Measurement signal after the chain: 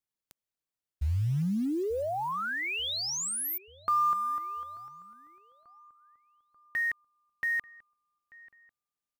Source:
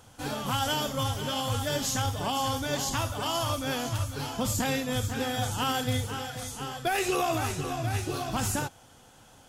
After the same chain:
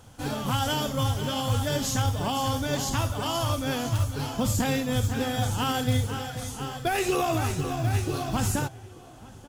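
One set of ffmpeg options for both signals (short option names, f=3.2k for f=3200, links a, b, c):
-filter_complex "[0:a]lowshelf=f=360:g=6,acrusher=bits=7:mode=log:mix=0:aa=0.000001,asplit=2[a][b];[b]adelay=888,lowpass=f=2.1k:p=1,volume=-21dB,asplit=2[c][d];[d]adelay=888,lowpass=f=2.1k:p=1,volume=0.53,asplit=2[e][f];[f]adelay=888,lowpass=f=2.1k:p=1,volume=0.53,asplit=2[g][h];[h]adelay=888,lowpass=f=2.1k:p=1,volume=0.53[i];[c][e][g][i]amix=inputs=4:normalize=0[j];[a][j]amix=inputs=2:normalize=0"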